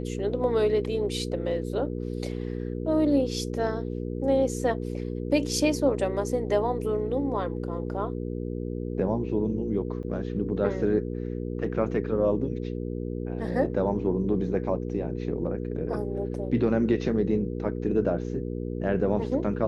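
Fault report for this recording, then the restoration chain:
hum 60 Hz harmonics 8 -32 dBFS
10.03–10.04 s: dropout 7.2 ms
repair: de-hum 60 Hz, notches 8; interpolate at 10.03 s, 7.2 ms

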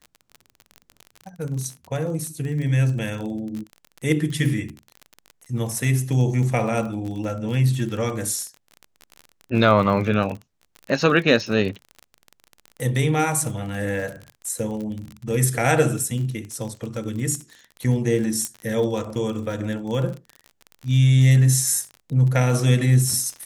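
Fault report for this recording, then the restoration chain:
crackle 34 per s -29 dBFS
18.45 s: pop -11 dBFS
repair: de-click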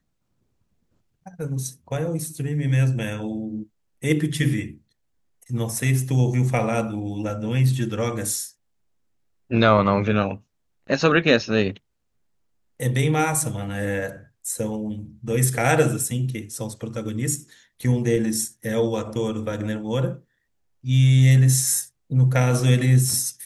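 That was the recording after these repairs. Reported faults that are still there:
18.45 s: pop

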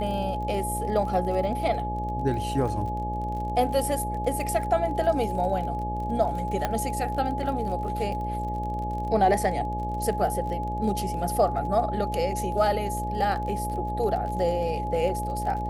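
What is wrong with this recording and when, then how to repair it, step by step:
buzz 60 Hz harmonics 11 -32 dBFS
crackle 35 per s -34 dBFS
whine 840 Hz -30 dBFS
6.65 s: pop -11 dBFS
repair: de-click; de-hum 60 Hz, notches 11; band-stop 840 Hz, Q 30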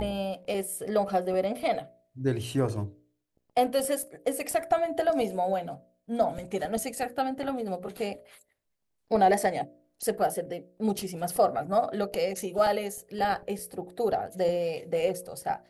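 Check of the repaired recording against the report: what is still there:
nothing left

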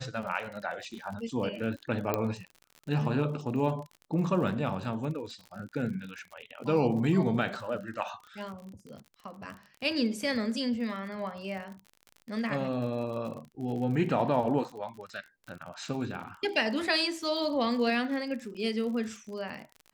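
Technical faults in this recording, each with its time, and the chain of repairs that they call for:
crackle 50 per s -39 dBFS
2.14 s: pop -14 dBFS
18.54–18.55 s: dropout 7.5 ms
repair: de-click; interpolate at 18.54 s, 7.5 ms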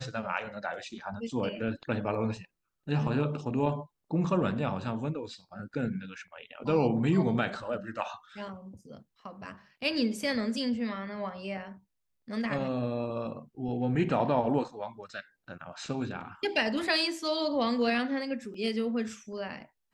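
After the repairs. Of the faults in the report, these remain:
2.14 s: pop

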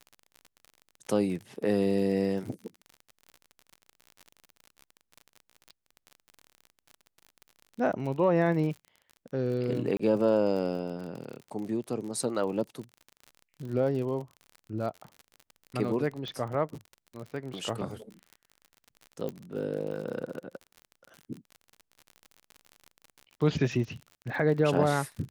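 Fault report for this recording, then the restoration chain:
crackle 44 per s -37 dBFS
9.97–9.99 s: dropout 25 ms
16.28 s: pop -25 dBFS
19.29 s: pop -23 dBFS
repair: de-click; interpolate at 9.97 s, 25 ms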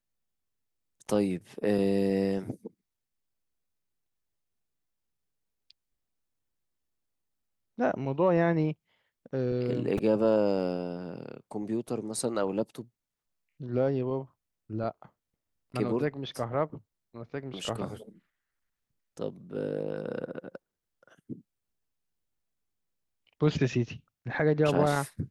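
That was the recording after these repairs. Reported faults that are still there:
16.28 s: pop

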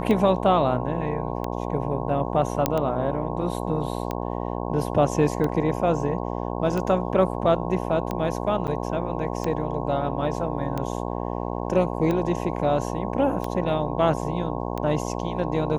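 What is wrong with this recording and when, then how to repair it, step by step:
buzz 60 Hz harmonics 18 -29 dBFS
tick 45 rpm -15 dBFS
2.66 s: pop -5 dBFS
8.67–8.68 s: dropout 8.9 ms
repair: de-click; de-hum 60 Hz, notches 18; interpolate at 8.67 s, 8.9 ms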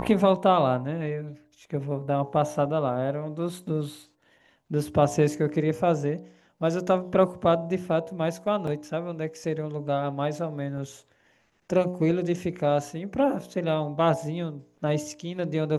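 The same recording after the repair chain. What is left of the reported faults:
nothing left

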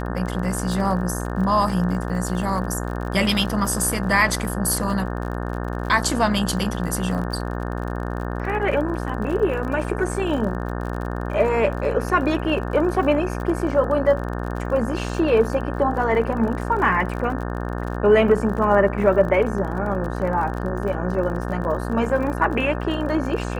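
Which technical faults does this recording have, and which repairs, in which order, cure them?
buzz 60 Hz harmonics 30 -27 dBFS
crackle 42 per s -30 dBFS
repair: de-click; de-hum 60 Hz, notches 30

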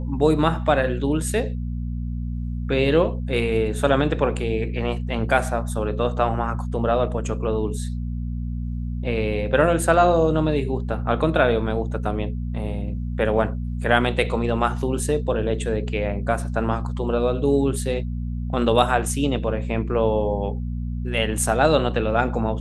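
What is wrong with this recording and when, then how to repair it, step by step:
hum 60 Hz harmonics 4 -27 dBFS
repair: de-hum 60 Hz, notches 4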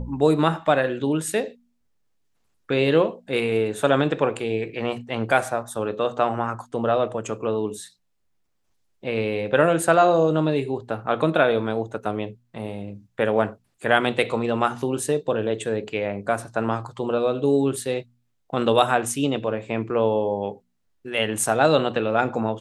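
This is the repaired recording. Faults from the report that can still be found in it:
nothing left

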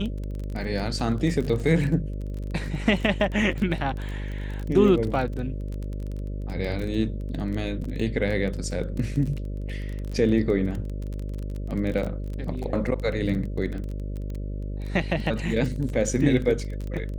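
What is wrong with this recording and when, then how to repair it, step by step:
buzz 50 Hz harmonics 12 -31 dBFS
crackle 23 per s -30 dBFS
7.84 s: dropout 4 ms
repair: de-click; de-hum 50 Hz, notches 12; interpolate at 7.84 s, 4 ms

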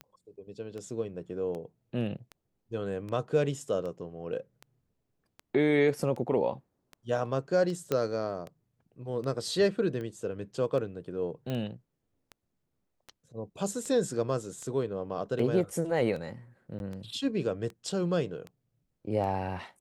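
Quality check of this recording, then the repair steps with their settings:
tick 78 rpm -28 dBFS
7.92 s: pop -15 dBFS
11.50 s: pop -22 dBFS
16.79–16.80 s: dropout 11 ms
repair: de-click; interpolate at 16.79 s, 11 ms

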